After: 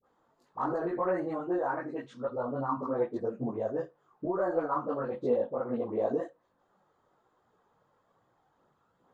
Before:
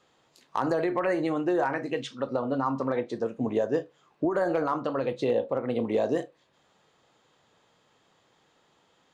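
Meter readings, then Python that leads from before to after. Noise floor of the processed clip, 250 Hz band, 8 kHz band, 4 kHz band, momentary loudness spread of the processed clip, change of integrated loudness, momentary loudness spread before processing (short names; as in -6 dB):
-73 dBFS, -5.5 dB, n/a, under -15 dB, 7 LU, -4.0 dB, 5 LU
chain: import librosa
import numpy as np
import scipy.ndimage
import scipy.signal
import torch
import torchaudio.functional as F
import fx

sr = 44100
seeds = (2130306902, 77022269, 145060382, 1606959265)

y = fx.chorus_voices(x, sr, voices=4, hz=1.2, base_ms=19, depth_ms=3.0, mix_pct=60)
y = fx.high_shelf_res(y, sr, hz=1800.0, db=-11.5, q=1.5)
y = fx.dispersion(y, sr, late='highs', ms=43.0, hz=910.0)
y = y * 10.0 ** (-2.0 / 20.0)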